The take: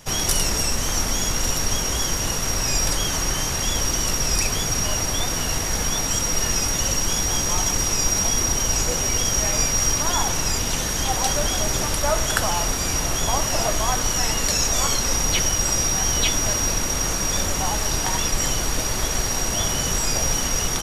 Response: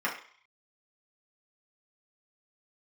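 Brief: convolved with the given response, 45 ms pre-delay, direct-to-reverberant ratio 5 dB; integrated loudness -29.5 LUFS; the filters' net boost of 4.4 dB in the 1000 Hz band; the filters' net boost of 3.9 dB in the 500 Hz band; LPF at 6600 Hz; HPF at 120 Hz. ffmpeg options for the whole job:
-filter_complex "[0:a]highpass=120,lowpass=6.6k,equalizer=f=500:t=o:g=3.5,equalizer=f=1k:t=o:g=4.5,asplit=2[a][b];[1:a]atrim=start_sample=2205,adelay=45[c];[b][c]afir=irnorm=-1:irlink=0,volume=-15dB[d];[a][d]amix=inputs=2:normalize=0,volume=-8.5dB"

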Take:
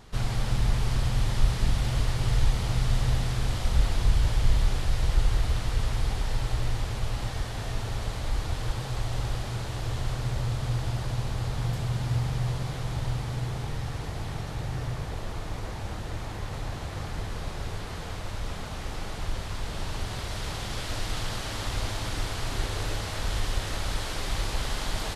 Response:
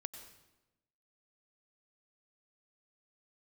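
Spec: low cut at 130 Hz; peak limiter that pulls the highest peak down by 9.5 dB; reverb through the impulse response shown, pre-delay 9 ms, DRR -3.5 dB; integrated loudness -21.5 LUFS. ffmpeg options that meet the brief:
-filter_complex "[0:a]highpass=130,alimiter=level_in=4.5dB:limit=-24dB:level=0:latency=1,volume=-4.5dB,asplit=2[a][b];[1:a]atrim=start_sample=2205,adelay=9[c];[b][c]afir=irnorm=-1:irlink=0,volume=6.5dB[d];[a][d]amix=inputs=2:normalize=0,volume=10.5dB"

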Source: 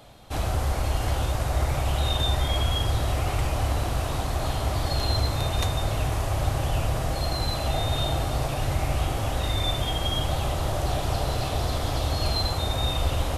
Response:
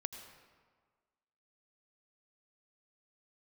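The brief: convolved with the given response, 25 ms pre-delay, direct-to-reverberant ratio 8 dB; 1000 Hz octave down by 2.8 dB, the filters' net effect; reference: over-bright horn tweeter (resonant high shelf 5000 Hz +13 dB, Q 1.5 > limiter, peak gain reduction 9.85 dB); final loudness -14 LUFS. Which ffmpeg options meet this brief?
-filter_complex "[0:a]equalizer=f=1k:t=o:g=-3.5,asplit=2[a][b];[1:a]atrim=start_sample=2205,adelay=25[c];[b][c]afir=irnorm=-1:irlink=0,volume=-6.5dB[d];[a][d]amix=inputs=2:normalize=0,highshelf=f=5k:t=q:w=1.5:g=13,volume=10.5dB,alimiter=limit=-4dB:level=0:latency=1"

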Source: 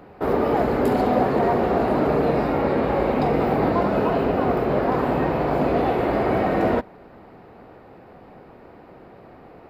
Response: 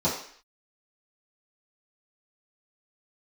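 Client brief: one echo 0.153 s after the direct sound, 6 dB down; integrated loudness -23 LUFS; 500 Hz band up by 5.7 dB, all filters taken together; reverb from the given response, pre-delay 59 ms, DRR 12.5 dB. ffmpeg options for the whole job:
-filter_complex "[0:a]equalizer=f=500:t=o:g=7,aecho=1:1:153:0.501,asplit=2[a][b];[1:a]atrim=start_sample=2205,adelay=59[c];[b][c]afir=irnorm=-1:irlink=0,volume=-25dB[d];[a][d]amix=inputs=2:normalize=0,volume=-7.5dB"

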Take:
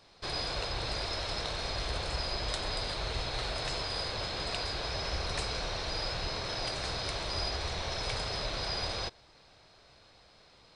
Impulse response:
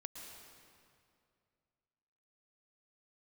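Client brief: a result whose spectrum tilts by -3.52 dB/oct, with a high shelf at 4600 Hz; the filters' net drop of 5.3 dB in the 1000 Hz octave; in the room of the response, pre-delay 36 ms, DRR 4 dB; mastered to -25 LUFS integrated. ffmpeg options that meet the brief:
-filter_complex "[0:a]equalizer=f=1k:t=o:g=-7,highshelf=f=4.6k:g=-3.5,asplit=2[a][b];[1:a]atrim=start_sample=2205,adelay=36[c];[b][c]afir=irnorm=-1:irlink=0,volume=-0.5dB[d];[a][d]amix=inputs=2:normalize=0,volume=9.5dB"

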